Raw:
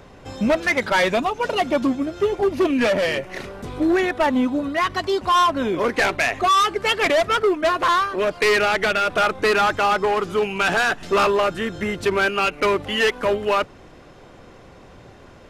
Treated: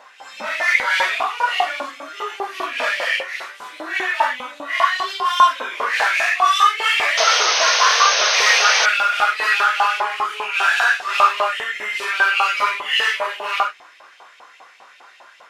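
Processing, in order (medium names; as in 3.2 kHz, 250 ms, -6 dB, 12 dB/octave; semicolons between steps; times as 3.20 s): phase randomisation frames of 200 ms; in parallel at -1 dB: peak limiter -16 dBFS, peak gain reduction 10.5 dB; on the sum: LFO high-pass saw up 5 Hz 790–2800 Hz; painted sound noise, 7.17–8.86 s, 440–6500 Hz -15 dBFS; trim -3 dB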